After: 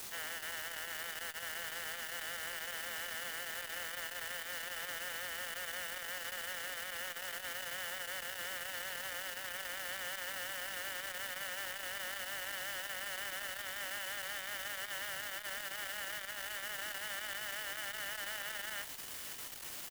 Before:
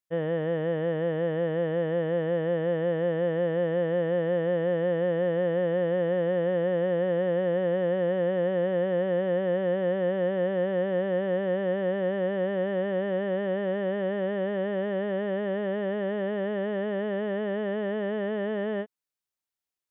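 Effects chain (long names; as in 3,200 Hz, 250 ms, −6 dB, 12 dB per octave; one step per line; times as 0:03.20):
high-pass filter 1,300 Hz 24 dB per octave
comb filter 1.4 ms, depth 50%
on a send: delay with a high-pass on its return 595 ms, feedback 68%, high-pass 2,800 Hz, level −8.5 dB
on the sum: bit-depth reduction 8 bits, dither triangular
saturating transformer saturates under 1,700 Hz
level +3.5 dB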